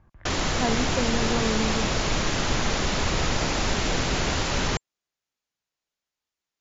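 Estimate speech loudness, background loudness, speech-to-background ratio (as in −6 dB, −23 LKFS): −30.0 LKFS, −25.5 LKFS, −4.5 dB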